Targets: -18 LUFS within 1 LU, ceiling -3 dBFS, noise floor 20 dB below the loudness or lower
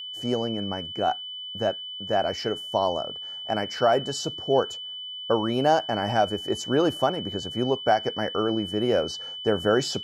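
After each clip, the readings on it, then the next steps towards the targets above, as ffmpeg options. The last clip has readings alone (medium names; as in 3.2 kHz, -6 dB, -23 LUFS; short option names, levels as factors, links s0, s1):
steady tone 3 kHz; tone level -34 dBFS; loudness -26.0 LUFS; peak level -8.5 dBFS; loudness target -18.0 LUFS
-> -af "bandreject=f=3000:w=30"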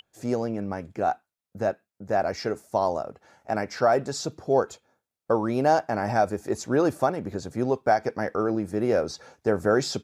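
steady tone not found; loudness -26.5 LUFS; peak level -9.0 dBFS; loudness target -18.0 LUFS
-> -af "volume=2.66,alimiter=limit=0.708:level=0:latency=1"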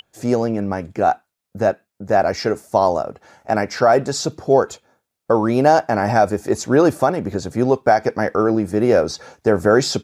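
loudness -18.5 LUFS; peak level -3.0 dBFS; noise floor -79 dBFS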